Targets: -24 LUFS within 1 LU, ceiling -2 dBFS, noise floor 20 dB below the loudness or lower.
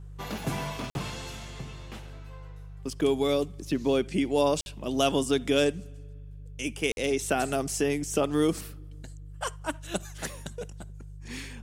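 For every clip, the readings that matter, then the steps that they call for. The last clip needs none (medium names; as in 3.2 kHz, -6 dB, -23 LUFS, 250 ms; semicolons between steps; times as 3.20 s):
dropouts 3; longest dropout 51 ms; hum 50 Hz; highest harmonic 150 Hz; hum level -41 dBFS; loudness -29.0 LUFS; peak level -10.0 dBFS; loudness target -24.0 LUFS
-> interpolate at 0.90/4.61/6.92 s, 51 ms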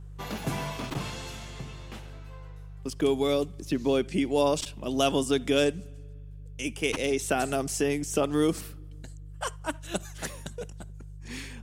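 dropouts 0; hum 50 Hz; highest harmonic 150 Hz; hum level -41 dBFS
-> de-hum 50 Hz, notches 3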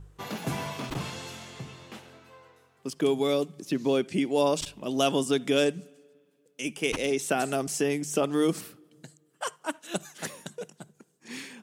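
hum not found; loudness -28.5 LUFS; peak level -10.5 dBFS; loudness target -24.0 LUFS
-> trim +4.5 dB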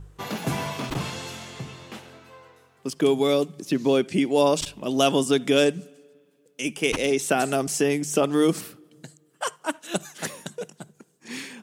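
loudness -24.0 LUFS; peak level -6.0 dBFS; noise floor -62 dBFS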